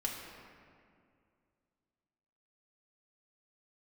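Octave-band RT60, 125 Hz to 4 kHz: 2.7 s, 2.7 s, 2.4 s, 2.1 s, 1.9 s, 1.3 s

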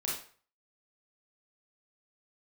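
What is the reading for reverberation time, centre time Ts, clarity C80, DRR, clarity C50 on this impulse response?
0.45 s, 44 ms, 8.0 dB, -5.0 dB, 2.5 dB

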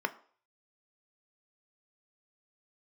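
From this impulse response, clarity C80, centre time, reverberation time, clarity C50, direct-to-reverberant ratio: 21.5 dB, 4 ms, 0.50 s, 18.0 dB, 9.0 dB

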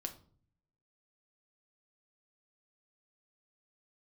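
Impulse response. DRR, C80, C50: 4.5 dB, 18.0 dB, 13.5 dB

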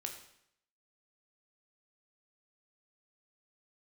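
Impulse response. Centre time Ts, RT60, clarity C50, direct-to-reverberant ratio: 21 ms, 0.70 s, 7.5 dB, 3.0 dB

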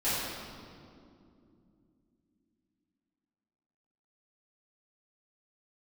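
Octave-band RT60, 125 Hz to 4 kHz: 3.7 s, 4.4 s, 3.0 s, 2.2 s, 1.7 s, 1.6 s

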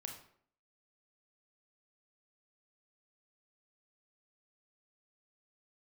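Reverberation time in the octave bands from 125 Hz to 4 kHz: 0.60 s, 0.65 s, 0.65 s, 0.60 s, 0.50 s, 0.40 s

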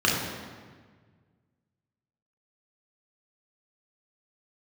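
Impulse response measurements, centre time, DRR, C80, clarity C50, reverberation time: 76 ms, -4.0 dB, 3.5 dB, 1.5 dB, 1.6 s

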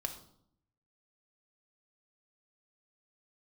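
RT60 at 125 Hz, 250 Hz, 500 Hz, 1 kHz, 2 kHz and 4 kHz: 1.0 s, 0.90 s, 0.70 s, 0.65 s, 0.45 s, 0.50 s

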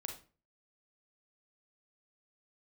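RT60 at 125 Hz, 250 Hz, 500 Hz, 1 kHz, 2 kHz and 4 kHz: 0.50 s, 0.45 s, 0.40 s, 0.35 s, 0.35 s, 0.30 s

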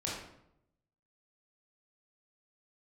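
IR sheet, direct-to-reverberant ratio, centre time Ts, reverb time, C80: -5.5 dB, 58 ms, 0.80 s, 4.5 dB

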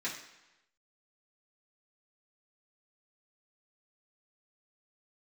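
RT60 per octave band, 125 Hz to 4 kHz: 0.95 s, 0.90 s, 0.95 s, 1.0 s, 1.0 s, 0.95 s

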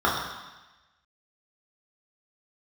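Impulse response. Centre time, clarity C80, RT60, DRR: 61 ms, 4.5 dB, 1.1 s, -6.5 dB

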